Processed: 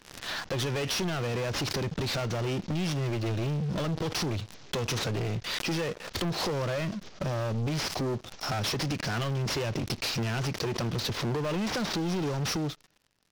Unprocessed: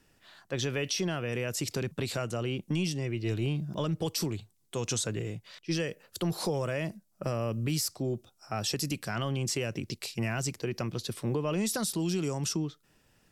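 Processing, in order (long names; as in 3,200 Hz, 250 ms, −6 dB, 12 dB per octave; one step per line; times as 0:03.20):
variable-slope delta modulation 32 kbit/s
noise gate −55 dBFS, range −10 dB
downward compressor 4 to 1, threshold −45 dBFS, peak gain reduction 15.5 dB
leveller curve on the samples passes 5
background raised ahead of every attack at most 79 dB per second
level +3.5 dB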